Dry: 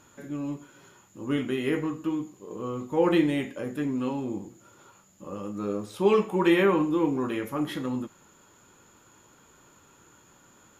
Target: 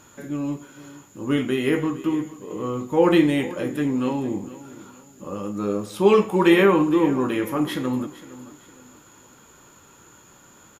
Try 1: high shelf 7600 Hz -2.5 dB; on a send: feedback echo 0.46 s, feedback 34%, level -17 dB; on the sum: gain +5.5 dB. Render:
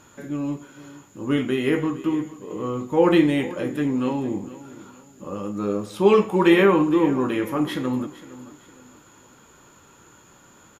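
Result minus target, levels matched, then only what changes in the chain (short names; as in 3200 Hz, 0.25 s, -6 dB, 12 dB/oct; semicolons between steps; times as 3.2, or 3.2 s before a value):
8000 Hz band -3.0 dB
change: high shelf 7600 Hz +3.5 dB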